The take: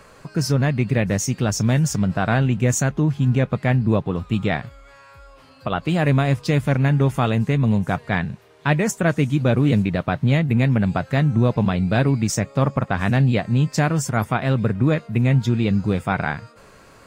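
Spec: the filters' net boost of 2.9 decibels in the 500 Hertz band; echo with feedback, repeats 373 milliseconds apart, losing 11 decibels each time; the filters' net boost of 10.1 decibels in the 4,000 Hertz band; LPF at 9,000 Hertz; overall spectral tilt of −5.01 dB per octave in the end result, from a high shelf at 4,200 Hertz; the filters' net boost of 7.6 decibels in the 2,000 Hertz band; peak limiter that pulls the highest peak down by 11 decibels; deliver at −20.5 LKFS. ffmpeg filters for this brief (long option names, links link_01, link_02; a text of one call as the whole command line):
ffmpeg -i in.wav -af "lowpass=9000,equalizer=frequency=500:width_type=o:gain=3,equalizer=frequency=2000:width_type=o:gain=6.5,equalizer=frequency=4000:width_type=o:gain=8,highshelf=frequency=4200:gain=5.5,alimiter=limit=-12dB:level=0:latency=1,aecho=1:1:373|746|1119:0.282|0.0789|0.0221,volume=1dB" out.wav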